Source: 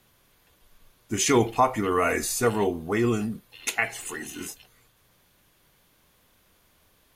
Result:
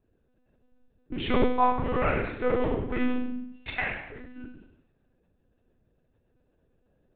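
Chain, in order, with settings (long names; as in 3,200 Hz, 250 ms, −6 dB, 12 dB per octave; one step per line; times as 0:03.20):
adaptive Wiener filter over 41 samples
mains-hum notches 50/100/150/200/250 Hz
flutter between parallel walls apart 5.9 metres, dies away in 0.75 s
on a send at −8 dB: convolution reverb RT60 0.40 s, pre-delay 50 ms
on the sum: one-pitch LPC vocoder at 8 kHz 250 Hz
level −4 dB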